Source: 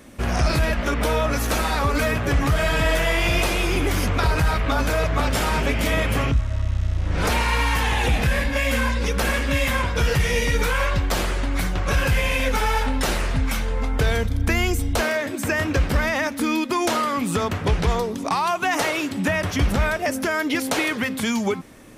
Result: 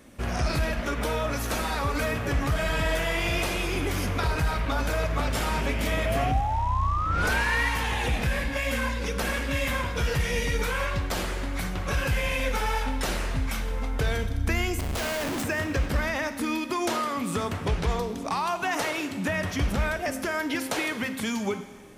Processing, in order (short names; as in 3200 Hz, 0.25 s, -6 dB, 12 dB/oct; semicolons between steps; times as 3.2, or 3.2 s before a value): 6.05–7.69 painted sound rise 630–2000 Hz -23 dBFS; 14.79–15.43 Schmitt trigger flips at -34.5 dBFS; Schroeder reverb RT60 1.5 s, combs from 33 ms, DRR 10.5 dB; gain -6 dB